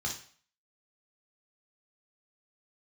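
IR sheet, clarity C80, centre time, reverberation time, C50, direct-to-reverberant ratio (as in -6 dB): 12.5 dB, 24 ms, 0.45 s, 6.5 dB, -1.5 dB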